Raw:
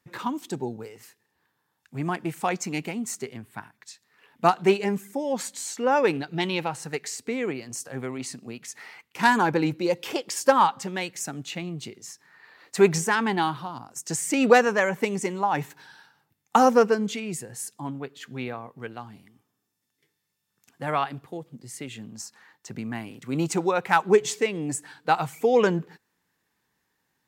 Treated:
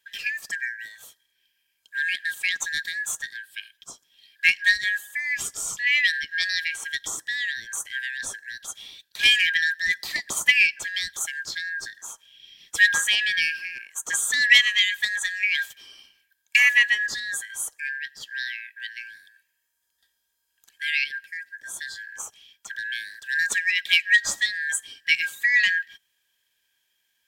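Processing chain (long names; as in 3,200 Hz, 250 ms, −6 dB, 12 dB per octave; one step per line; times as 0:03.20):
band-splitting scrambler in four parts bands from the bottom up 4123
high-shelf EQ 3,700 Hz +8.5 dB
hollow resonant body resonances 1,600/3,200 Hz, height 7 dB
level −2.5 dB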